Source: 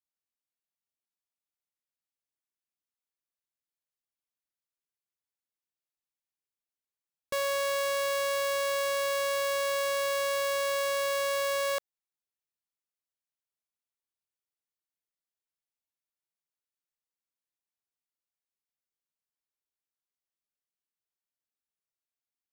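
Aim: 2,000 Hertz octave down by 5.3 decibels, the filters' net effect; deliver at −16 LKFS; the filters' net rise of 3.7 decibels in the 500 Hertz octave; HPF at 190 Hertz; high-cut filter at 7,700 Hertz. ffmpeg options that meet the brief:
ffmpeg -i in.wav -af "highpass=190,lowpass=7700,equalizer=frequency=500:width_type=o:gain=4.5,equalizer=frequency=2000:width_type=o:gain=-7,volume=12dB" out.wav

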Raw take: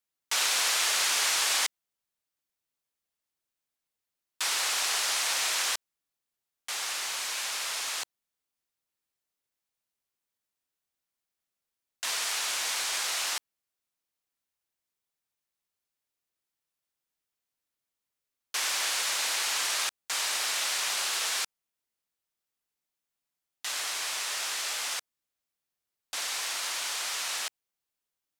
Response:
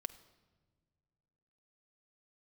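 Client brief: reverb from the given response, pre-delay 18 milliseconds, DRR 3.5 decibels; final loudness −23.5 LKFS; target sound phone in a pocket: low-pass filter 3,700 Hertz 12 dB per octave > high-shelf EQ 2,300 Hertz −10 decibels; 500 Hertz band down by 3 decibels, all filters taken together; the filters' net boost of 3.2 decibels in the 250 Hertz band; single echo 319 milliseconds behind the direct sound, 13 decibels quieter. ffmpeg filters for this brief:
-filter_complex "[0:a]equalizer=frequency=250:width_type=o:gain=6.5,equalizer=frequency=500:width_type=o:gain=-4.5,aecho=1:1:319:0.224,asplit=2[link_01][link_02];[1:a]atrim=start_sample=2205,adelay=18[link_03];[link_02][link_03]afir=irnorm=-1:irlink=0,volume=-1dB[link_04];[link_01][link_04]amix=inputs=2:normalize=0,lowpass=3700,highshelf=frequency=2300:gain=-10,volume=12.5dB"

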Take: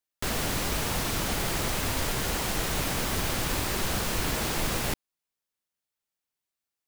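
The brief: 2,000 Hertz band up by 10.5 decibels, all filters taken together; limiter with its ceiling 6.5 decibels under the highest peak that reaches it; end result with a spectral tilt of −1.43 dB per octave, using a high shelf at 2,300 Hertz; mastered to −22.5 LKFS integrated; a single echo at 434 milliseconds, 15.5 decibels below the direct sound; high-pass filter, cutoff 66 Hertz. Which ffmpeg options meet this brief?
ffmpeg -i in.wav -af "highpass=66,equalizer=frequency=2000:width_type=o:gain=8.5,highshelf=frequency=2300:gain=8.5,alimiter=limit=-15.5dB:level=0:latency=1,aecho=1:1:434:0.168,volume=0.5dB" out.wav

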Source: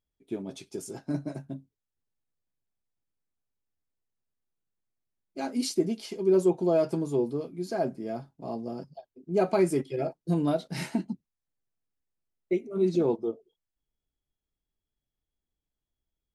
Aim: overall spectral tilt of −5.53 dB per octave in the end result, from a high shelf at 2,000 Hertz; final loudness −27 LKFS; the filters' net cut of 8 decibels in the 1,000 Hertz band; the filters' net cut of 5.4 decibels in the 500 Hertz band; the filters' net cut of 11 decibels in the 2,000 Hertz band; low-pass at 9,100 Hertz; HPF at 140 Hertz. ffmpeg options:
ffmpeg -i in.wav -af "highpass=140,lowpass=9100,equalizer=frequency=500:width_type=o:gain=-6,equalizer=frequency=1000:width_type=o:gain=-6,highshelf=frequency=2000:gain=-5,equalizer=frequency=2000:width_type=o:gain=-9,volume=6.5dB" out.wav

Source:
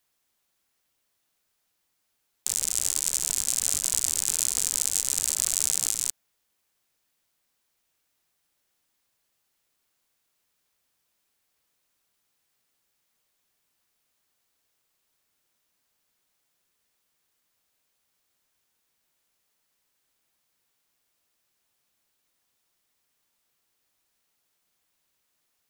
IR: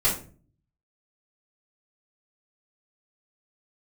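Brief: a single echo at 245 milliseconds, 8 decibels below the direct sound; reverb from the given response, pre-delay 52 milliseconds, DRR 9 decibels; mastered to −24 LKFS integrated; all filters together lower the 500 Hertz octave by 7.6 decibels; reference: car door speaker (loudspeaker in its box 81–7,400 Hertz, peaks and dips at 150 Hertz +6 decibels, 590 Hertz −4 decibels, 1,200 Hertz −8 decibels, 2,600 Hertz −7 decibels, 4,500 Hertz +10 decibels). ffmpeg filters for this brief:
-filter_complex "[0:a]equalizer=frequency=500:width_type=o:gain=-8,aecho=1:1:245:0.398,asplit=2[link_01][link_02];[1:a]atrim=start_sample=2205,adelay=52[link_03];[link_02][link_03]afir=irnorm=-1:irlink=0,volume=-21.5dB[link_04];[link_01][link_04]amix=inputs=2:normalize=0,highpass=81,equalizer=frequency=150:width_type=q:width=4:gain=6,equalizer=frequency=590:width_type=q:width=4:gain=-4,equalizer=frequency=1200:width_type=q:width=4:gain=-8,equalizer=frequency=2600:width_type=q:width=4:gain=-7,equalizer=frequency=4500:width_type=q:width=4:gain=10,lowpass=frequency=7400:width=0.5412,lowpass=frequency=7400:width=1.3066,volume=1.5dB"

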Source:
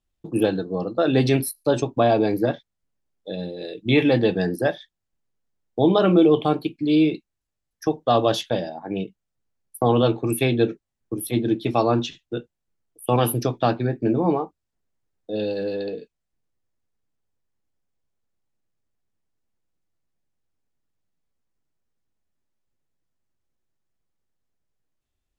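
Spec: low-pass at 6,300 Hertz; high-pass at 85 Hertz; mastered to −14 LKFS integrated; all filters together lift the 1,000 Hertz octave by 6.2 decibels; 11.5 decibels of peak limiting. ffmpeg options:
ffmpeg -i in.wav -af "highpass=85,lowpass=6300,equalizer=frequency=1000:width_type=o:gain=9,volume=11dB,alimiter=limit=-2.5dB:level=0:latency=1" out.wav

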